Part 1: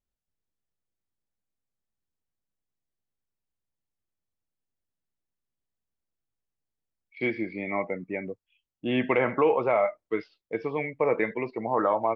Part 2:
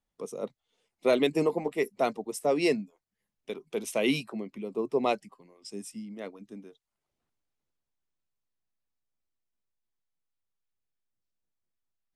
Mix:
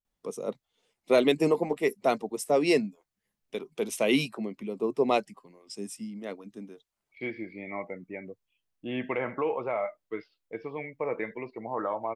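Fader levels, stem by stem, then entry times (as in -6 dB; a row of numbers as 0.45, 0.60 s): -7.0, +2.0 dB; 0.00, 0.05 s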